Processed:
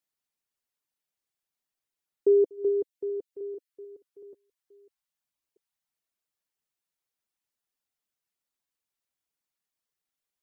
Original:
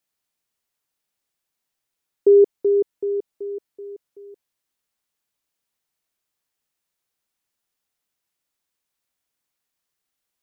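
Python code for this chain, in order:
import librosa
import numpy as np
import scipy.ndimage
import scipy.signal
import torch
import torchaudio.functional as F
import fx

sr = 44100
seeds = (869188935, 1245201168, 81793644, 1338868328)

y = fx.reverse_delay(x, sr, ms=619, wet_db=-14.0)
y = fx.dereverb_blind(y, sr, rt60_s=0.52)
y = F.gain(torch.from_numpy(y), -7.0).numpy()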